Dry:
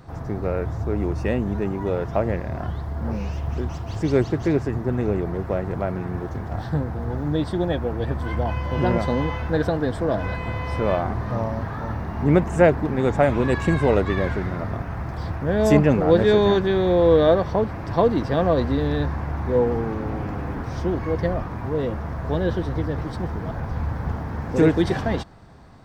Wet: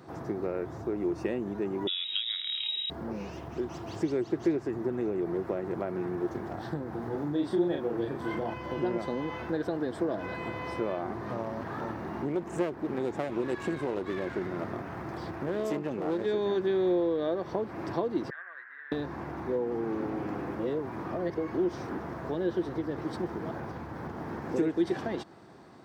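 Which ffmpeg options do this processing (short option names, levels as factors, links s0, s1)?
-filter_complex "[0:a]asettb=1/sr,asplit=3[s0][s1][s2];[s0]atrim=end=1.874[s3];[s1]atrim=start=1.87:end=2.9,asetpts=PTS-STARTPTS,afade=t=in:d=0.004:c=qsin,afade=t=out:st=1.026:d=0.004:c=qsin,lowpass=f=3300:t=q:w=0.5098,lowpass=f=3300:t=q:w=0.6013,lowpass=f=3300:t=q:w=0.9,lowpass=f=3300:t=q:w=2.563,afreqshift=-3900[s4];[s2]atrim=start=2.896[s5];[s3][s4]acrossfade=d=0.004:c1=hsin:c2=qsin[s6];[s6][s5]acrossfade=d=0.004:c1=qsin:c2=hsin,asettb=1/sr,asplit=3[s7][s8][s9];[s7]atrim=end=6.894[s10];[s8]atrim=start=6.89:end=8.54,asetpts=PTS-STARTPTS,afade=t=in:d=0.004:c=qsin,afade=t=out:st=1.646:d=0.004:c=qsin,asplit=2[s11][s12];[s12]adelay=35,volume=0.631[s13];[s11][s13]amix=inputs=2:normalize=0,atrim=end_sample=72765[s14];[s9]atrim=start=8.536[s15];[s10][s14]acrossfade=d=0.004:c1=hsin:c2=qsin[s16];[s16][s15]acrossfade=d=0.004:c1=qsin:c2=hsin,asettb=1/sr,asplit=3[s17][s18][s19];[s17]atrim=end=11.264[s20];[s18]atrim=start=11.26:end=16.26,asetpts=PTS-STARTPTS,afade=t=in:d=0.004:c=qsin,afade=t=out:st=4.996:d=0.004:c=qsin,aeval=exprs='clip(val(0),-1,0.0631)':c=same[s21];[s19]atrim=start=16.256[s22];[s20][s21]acrossfade=d=0.004:c1=hsin:c2=qsin[s23];[s23][s22]acrossfade=d=0.004:c1=qsin:c2=hsin,asettb=1/sr,asplit=3[s24][s25][s26];[s24]atrim=end=18.304[s27];[s25]atrim=start=18.3:end=18.92,asetpts=PTS-STARTPTS,afade=t=in:d=0.004:c=qsin,afade=t=out:st=0.616:d=0.004:c=qsin,asuperpass=centerf=1700:order=4:qfactor=3.5[s28];[s26]atrim=start=18.916[s29];[s27][s28]acrossfade=d=0.004:c1=hsin:c2=qsin[s30];[s30][s29]acrossfade=d=0.004:c1=qsin:c2=hsin,asplit=3[s31][s32][s33];[s31]atrim=end=20.552[s34];[s32]atrim=start=20.548:end=21.982,asetpts=PTS-STARTPTS,areverse[s35];[s33]atrim=start=21.978[s36];[s34][s35]acrossfade=d=0.004:c1=hsin:c2=hsin[s37];[s37][s36]acrossfade=d=0.004:c1=hsin:c2=hsin,acompressor=threshold=0.0501:ratio=6,highpass=180,equalizer=f=350:t=o:w=0.34:g=9.5,volume=0.708"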